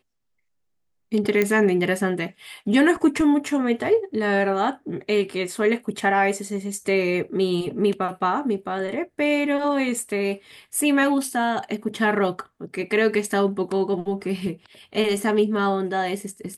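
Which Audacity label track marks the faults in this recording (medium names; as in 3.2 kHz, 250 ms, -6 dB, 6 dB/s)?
1.420000	1.420000	pop -8 dBFS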